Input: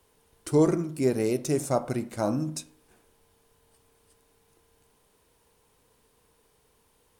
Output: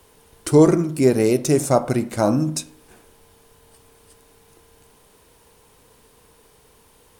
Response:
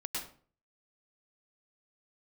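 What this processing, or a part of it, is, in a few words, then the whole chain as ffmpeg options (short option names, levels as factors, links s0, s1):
parallel compression: -filter_complex "[0:a]asplit=2[s0][s1];[s1]acompressor=threshold=0.00891:ratio=6,volume=0.531[s2];[s0][s2]amix=inputs=2:normalize=0,volume=2.51"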